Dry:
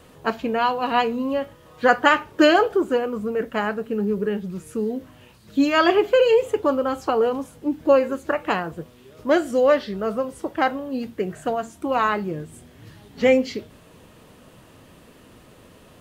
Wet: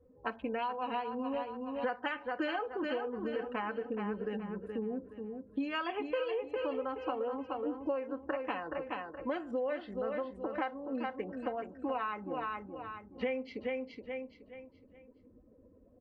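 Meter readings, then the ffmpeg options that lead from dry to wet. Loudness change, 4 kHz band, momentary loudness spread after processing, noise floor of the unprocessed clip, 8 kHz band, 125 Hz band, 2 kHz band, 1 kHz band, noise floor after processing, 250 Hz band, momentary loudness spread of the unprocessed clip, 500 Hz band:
-15.5 dB, -17.0 dB, 7 LU, -50 dBFS, no reading, -15.5 dB, -15.5 dB, -14.0 dB, -62 dBFS, -14.0 dB, 12 LU, -15.5 dB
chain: -filter_complex "[0:a]equalizer=f=1200:w=7.6:g=-4.5,afftdn=nr=24:nf=-42,aecho=1:1:3.9:0.51,acrossover=split=530|1700[s0][s1][s2];[s2]aeval=exprs='sgn(val(0))*max(abs(val(0))-0.00224,0)':c=same[s3];[s0][s1][s3]amix=inputs=3:normalize=0,equalizer=f=160:t=o:w=0.67:g=-9,equalizer=f=1000:t=o:w=0.67:g=5,equalizer=f=2500:t=o:w=0.67:g=6,asplit=2[s4][s5];[s5]aecho=0:1:422|844|1266|1688:0.355|0.11|0.0341|0.0106[s6];[s4][s6]amix=inputs=2:normalize=0,acompressor=threshold=0.0631:ratio=6,lowpass=3300,volume=0.376"

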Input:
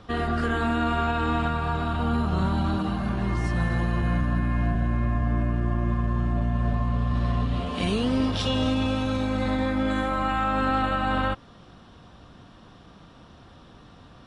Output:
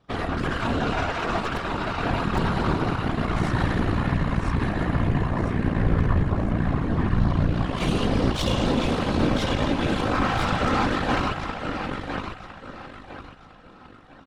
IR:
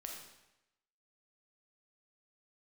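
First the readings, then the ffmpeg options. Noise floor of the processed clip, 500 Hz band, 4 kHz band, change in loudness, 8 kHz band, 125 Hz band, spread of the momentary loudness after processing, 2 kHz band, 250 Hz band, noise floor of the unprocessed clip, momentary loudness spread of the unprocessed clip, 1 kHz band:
-48 dBFS, +3.0 dB, +2.5 dB, +1.0 dB, no reading, +1.5 dB, 7 LU, +2.5 dB, +1.0 dB, -50 dBFS, 3 LU, +1.0 dB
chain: -af "aecho=1:1:1006|2012|3018|4024|5030|6036|7042:0.596|0.322|0.174|0.0938|0.0506|0.0274|0.0148,aeval=exprs='0.237*(cos(1*acos(clip(val(0)/0.237,-1,1)))-cos(1*PI/2))+0.0531*(cos(4*acos(clip(val(0)/0.237,-1,1)))-cos(4*PI/2))+0.0266*(cos(7*acos(clip(val(0)/0.237,-1,1)))-cos(7*PI/2))':c=same,afftfilt=real='hypot(re,im)*cos(2*PI*random(0))':imag='hypot(re,im)*sin(2*PI*random(1))':win_size=512:overlap=0.75,volume=1.78"

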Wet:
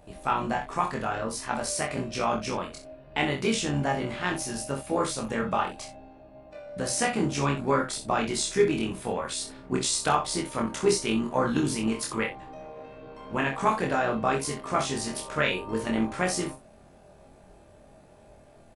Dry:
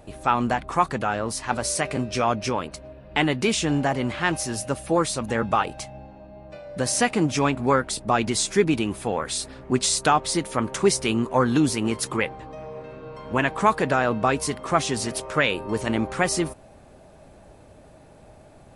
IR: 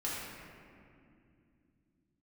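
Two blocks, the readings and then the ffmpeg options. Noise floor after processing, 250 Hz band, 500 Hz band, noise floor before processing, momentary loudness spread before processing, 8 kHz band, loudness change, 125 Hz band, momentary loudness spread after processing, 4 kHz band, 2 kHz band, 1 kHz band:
-54 dBFS, -4.5 dB, -4.0 dB, -50 dBFS, 9 LU, -4.5 dB, -4.5 dB, -5.0 dB, 9 LU, -4.0 dB, -4.5 dB, -4.5 dB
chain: -filter_complex "[0:a]tremolo=f=67:d=0.571,asplit=2[s0][s1];[s1]adelay=22,volume=0.596[s2];[s0][s2]amix=inputs=2:normalize=0,aecho=1:1:27|64:0.562|0.316,volume=0.596"

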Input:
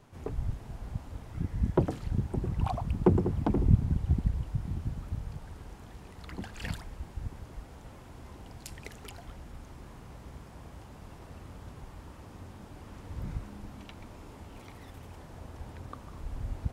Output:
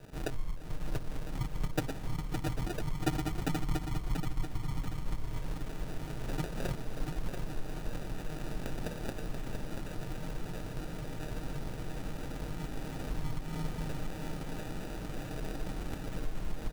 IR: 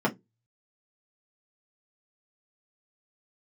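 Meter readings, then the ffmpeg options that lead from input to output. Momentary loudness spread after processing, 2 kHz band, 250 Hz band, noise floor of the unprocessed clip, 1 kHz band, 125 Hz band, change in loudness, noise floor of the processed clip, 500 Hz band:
6 LU, +5.0 dB, -3.5 dB, -50 dBFS, -0.5 dB, -5.0 dB, -6.5 dB, -41 dBFS, -3.5 dB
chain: -filter_complex "[0:a]afreqshift=-44,acompressor=threshold=0.0112:ratio=6,aecho=1:1:6.7:0.98,acrusher=samples=41:mix=1:aa=0.000001,asplit=2[s0][s1];[s1]aecho=0:1:685|1370|2055|2740|3425:0.501|0.221|0.097|0.0427|0.0188[s2];[s0][s2]amix=inputs=2:normalize=0,volume=1.88"

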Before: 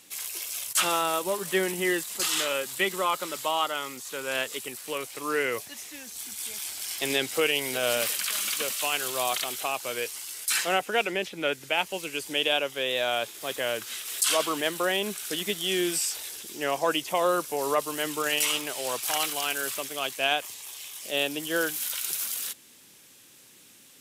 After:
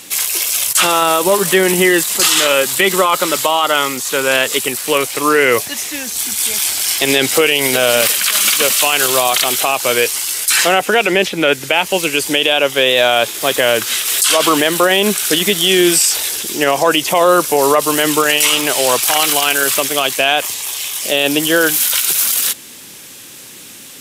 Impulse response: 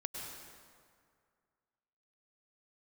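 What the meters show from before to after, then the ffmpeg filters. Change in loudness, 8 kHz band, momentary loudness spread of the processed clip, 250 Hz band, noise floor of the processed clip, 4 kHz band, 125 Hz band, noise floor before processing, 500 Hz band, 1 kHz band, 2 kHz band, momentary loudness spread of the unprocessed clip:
+15.0 dB, +15.5 dB, 5 LU, +16.0 dB, -36 dBFS, +14.5 dB, +16.5 dB, -54 dBFS, +14.5 dB, +14.0 dB, +14.5 dB, 9 LU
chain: -af "alimiter=level_in=9.44:limit=0.891:release=50:level=0:latency=1,volume=0.891"

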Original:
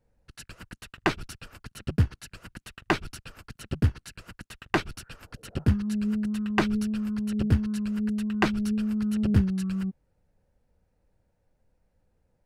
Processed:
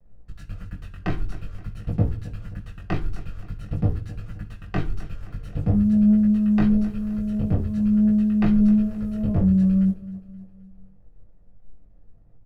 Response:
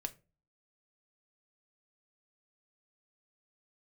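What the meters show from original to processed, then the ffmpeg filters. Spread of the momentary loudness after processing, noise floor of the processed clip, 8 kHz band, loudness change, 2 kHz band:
20 LU, -50 dBFS, under -10 dB, +6.0 dB, -8.0 dB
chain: -filter_complex "[0:a]aemphasis=mode=reproduction:type=riaa,acrusher=bits=8:mix=0:aa=0.5,asoftclip=type=tanh:threshold=0.2,flanger=delay=18.5:depth=3.5:speed=0.48,aecho=1:1:262|524|786|1048:0.141|0.0692|0.0339|0.0166[s0];[1:a]atrim=start_sample=2205,asetrate=31311,aresample=44100[s1];[s0][s1]afir=irnorm=-1:irlink=0"

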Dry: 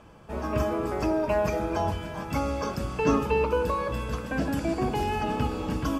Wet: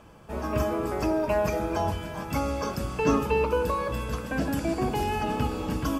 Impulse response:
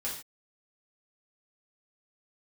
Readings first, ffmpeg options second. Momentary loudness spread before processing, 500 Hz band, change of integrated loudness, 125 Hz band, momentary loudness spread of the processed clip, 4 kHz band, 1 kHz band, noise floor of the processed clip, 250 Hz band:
6 LU, 0.0 dB, 0.0 dB, 0.0 dB, 6 LU, +1.0 dB, 0.0 dB, -37 dBFS, 0.0 dB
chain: -af "highshelf=f=9800:g=8.5"

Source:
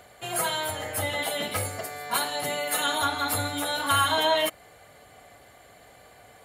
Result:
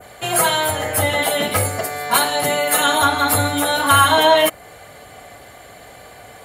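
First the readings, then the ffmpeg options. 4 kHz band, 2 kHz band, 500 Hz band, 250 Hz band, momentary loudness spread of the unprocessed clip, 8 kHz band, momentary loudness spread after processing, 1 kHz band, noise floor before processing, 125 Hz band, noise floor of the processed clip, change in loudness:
+8.0 dB, +10.0 dB, +11.0 dB, +11.0 dB, 8 LU, +10.5 dB, 7 LU, +10.5 dB, -53 dBFS, +11.0 dB, -42 dBFS, +10.0 dB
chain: -af "adynamicequalizer=threshold=0.00794:dfrequency=4000:dqfactor=0.7:tfrequency=4000:tqfactor=0.7:attack=5:release=100:ratio=0.375:range=2:mode=cutabove:tftype=bell,acontrast=75,volume=1.68"

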